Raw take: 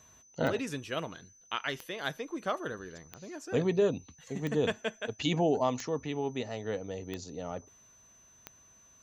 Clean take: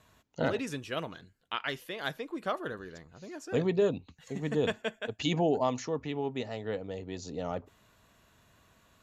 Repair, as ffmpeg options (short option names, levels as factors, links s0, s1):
-af "adeclick=t=4,bandreject=f=6100:w=30,asetnsamples=n=441:p=0,asendcmd='7.24 volume volume 3.5dB',volume=1"